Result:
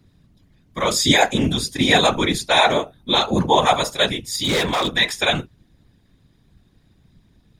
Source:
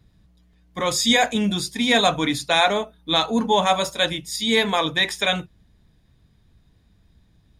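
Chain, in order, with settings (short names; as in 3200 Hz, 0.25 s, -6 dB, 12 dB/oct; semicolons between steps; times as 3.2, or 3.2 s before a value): whisperiser; 4.3–4.95 overloaded stage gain 19 dB; gain +2.5 dB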